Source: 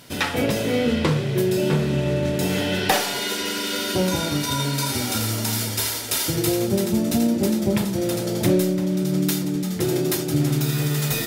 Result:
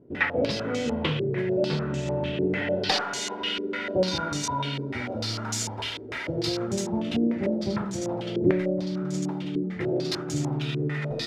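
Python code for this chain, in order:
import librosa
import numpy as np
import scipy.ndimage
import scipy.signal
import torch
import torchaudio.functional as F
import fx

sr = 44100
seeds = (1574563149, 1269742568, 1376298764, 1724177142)

y = fx.filter_held_lowpass(x, sr, hz=6.7, low_hz=390.0, high_hz=6900.0)
y = y * librosa.db_to_amplitude(-7.5)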